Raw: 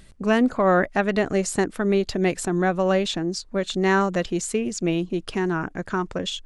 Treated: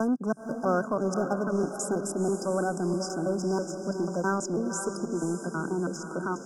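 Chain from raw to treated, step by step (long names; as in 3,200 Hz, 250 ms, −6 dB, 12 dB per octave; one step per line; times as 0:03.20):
slices reordered back to front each 163 ms, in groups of 3
Chebyshev high-pass filter 150 Hz, order 5
in parallel at −8 dB: wave folding −21 dBFS
on the sum: feedback delay with all-pass diffusion 498 ms, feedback 45%, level −7.5 dB
brick-wall band-stop 1,600–4,900 Hz
one half of a high-frequency compander encoder only
level −7 dB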